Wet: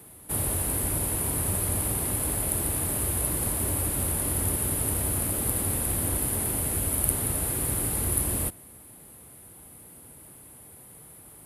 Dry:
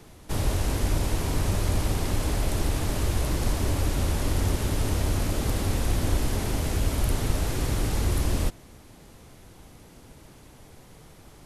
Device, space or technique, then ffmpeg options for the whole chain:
budget condenser microphone: -af "highpass=69,highshelf=frequency=7900:width_type=q:width=3:gain=11.5,volume=-3dB"

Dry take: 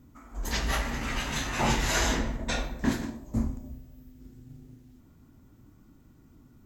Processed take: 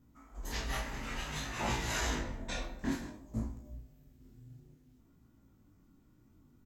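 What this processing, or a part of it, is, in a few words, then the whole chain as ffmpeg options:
double-tracked vocal: -filter_complex "[0:a]asplit=2[link_01][link_02];[link_02]adelay=33,volume=-6dB[link_03];[link_01][link_03]amix=inputs=2:normalize=0,flanger=delay=17.5:depth=5.9:speed=0.57,asplit=3[link_04][link_05][link_06];[link_04]afade=type=out:start_time=3.65:duration=0.02[link_07];[link_05]asplit=2[link_08][link_09];[link_09]adelay=50,volume=-6.5dB[link_10];[link_08][link_10]amix=inputs=2:normalize=0,afade=type=in:start_time=3.65:duration=0.02,afade=type=out:start_time=4.59:duration=0.02[link_11];[link_06]afade=type=in:start_time=4.59:duration=0.02[link_12];[link_07][link_11][link_12]amix=inputs=3:normalize=0,volume=-6dB"

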